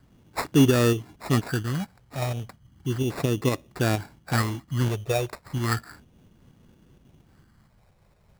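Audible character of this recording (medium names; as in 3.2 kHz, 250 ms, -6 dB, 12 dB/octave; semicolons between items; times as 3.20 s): tremolo saw up 4.3 Hz, depth 40%; phasing stages 4, 0.34 Hz, lowest notch 260–2800 Hz; aliases and images of a low sample rate 3.1 kHz, jitter 0%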